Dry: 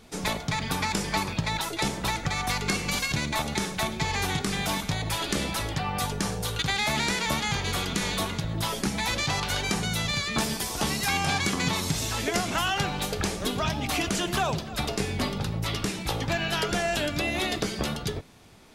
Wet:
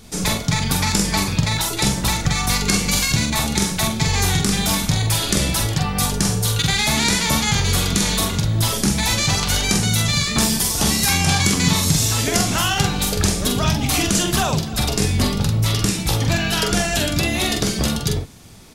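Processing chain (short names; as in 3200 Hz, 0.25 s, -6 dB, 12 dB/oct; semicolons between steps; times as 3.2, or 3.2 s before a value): tone controls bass +7 dB, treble +9 dB; doubler 45 ms -4.5 dB; gain +3.5 dB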